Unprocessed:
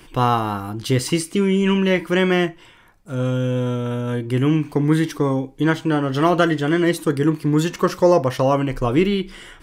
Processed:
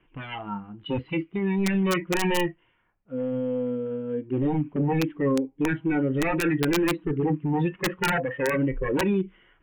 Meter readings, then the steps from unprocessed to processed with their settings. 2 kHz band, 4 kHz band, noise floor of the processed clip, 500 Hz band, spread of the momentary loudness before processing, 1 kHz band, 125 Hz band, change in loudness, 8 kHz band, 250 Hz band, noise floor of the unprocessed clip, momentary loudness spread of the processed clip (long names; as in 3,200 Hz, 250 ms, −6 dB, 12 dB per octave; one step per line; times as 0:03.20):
−4.0 dB, −7.5 dB, −66 dBFS, −7.5 dB, 7 LU, −8.5 dB, −8.5 dB, −6.5 dB, −6.0 dB, −6.0 dB, −47 dBFS, 8 LU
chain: wave folding −16.5 dBFS
Butterworth low-pass 3,100 Hz 72 dB per octave
noise reduction from a noise print of the clip's start 18 dB
wrap-around overflow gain 16.5 dB